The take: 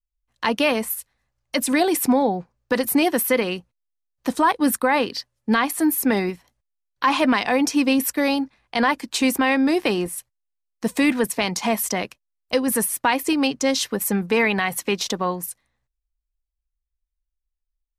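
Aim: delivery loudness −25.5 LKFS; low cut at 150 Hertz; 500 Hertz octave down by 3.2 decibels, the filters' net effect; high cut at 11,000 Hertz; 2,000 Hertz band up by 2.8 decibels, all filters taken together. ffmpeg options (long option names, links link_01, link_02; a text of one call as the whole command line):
ffmpeg -i in.wav -af "highpass=150,lowpass=11000,equalizer=frequency=500:width_type=o:gain=-4,equalizer=frequency=2000:width_type=o:gain=3.5,volume=-3.5dB" out.wav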